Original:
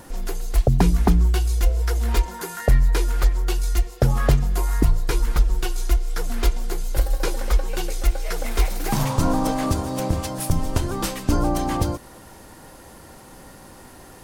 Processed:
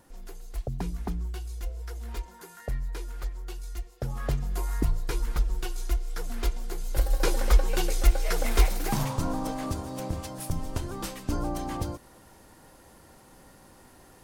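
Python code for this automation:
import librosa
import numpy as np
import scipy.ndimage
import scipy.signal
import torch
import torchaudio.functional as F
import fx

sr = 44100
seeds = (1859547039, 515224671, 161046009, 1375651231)

y = fx.gain(x, sr, db=fx.line((3.97, -15.5), (4.56, -8.0), (6.73, -8.0), (7.32, -0.5), (8.58, -0.5), (9.27, -9.5)))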